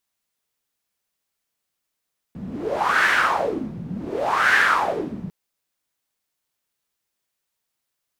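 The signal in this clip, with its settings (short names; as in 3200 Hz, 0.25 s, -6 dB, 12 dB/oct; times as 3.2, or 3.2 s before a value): wind-like swept noise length 2.95 s, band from 170 Hz, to 1700 Hz, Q 5.1, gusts 2, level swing 15.5 dB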